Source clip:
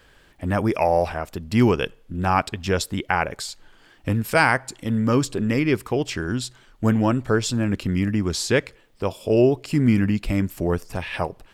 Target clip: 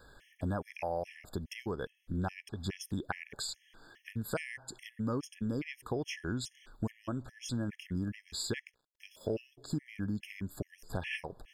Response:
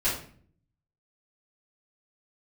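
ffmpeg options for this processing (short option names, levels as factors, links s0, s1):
-filter_complex "[0:a]asettb=1/sr,asplit=3[s0][s1][s2];[s0]atrim=end=8.274[s3];[s1]atrim=start=8.27:end=9.52,asetpts=PTS-STARTPTS,afade=t=in:d=0.004:c=qsin,afade=t=out:st=1.246:d=0.004:c=qsin,aeval=exprs='sgn(val(0))*max(abs(val(0))-0.00316,0)':c=same[s4];[s2]atrim=start=9.516[s5];[s3][s4]acrossfade=d=0.004:c1=hsin:c2=qsin[s6];[s6][s5]acrossfade=d=0.004:c1=qsin:c2=hsin,acompressor=threshold=0.0355:ratio=6,afftfilt=real='re*gt(sin(2*PI*2.4*pts/sr)*(1-2*mod(floor(b*sr/1024/1700),2)),0)':imag='im*gt(sin(2*PI*2.4*pts/sr)*(1-2*mod(floor(b*sr/1024/1700),2)),0)':win_size=1024:overlap=0.75,volume=0.75"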